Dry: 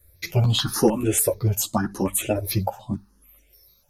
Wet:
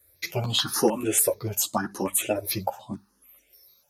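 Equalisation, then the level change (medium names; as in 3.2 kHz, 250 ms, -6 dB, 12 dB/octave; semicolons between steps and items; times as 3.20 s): high-pass 400 Hz 6 dB/octave; 0.0 dB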